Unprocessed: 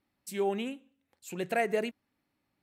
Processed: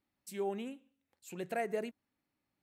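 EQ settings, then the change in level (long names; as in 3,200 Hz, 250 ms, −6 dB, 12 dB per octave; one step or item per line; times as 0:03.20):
dynamic equaliser 2,900 Hz, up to −5 dB, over −46 dBFS, Q 0.91
−6.0 dB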